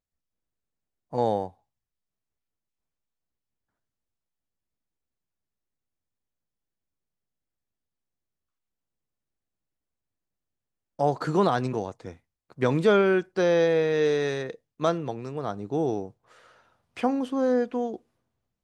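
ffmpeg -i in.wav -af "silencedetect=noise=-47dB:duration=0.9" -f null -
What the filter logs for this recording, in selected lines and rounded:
silence_start: 0.00
silence_end: 1.13 | silence_duration: 1.13
silence_start: 1.50
silence_end: 10.99 | silence_duration: 9.49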